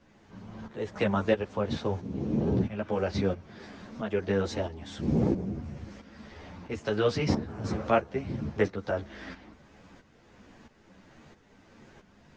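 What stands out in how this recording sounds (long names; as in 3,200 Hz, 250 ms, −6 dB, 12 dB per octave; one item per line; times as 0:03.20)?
tremolo saw up 1.5 Hz, depth 70%
a shimmering, thickened sound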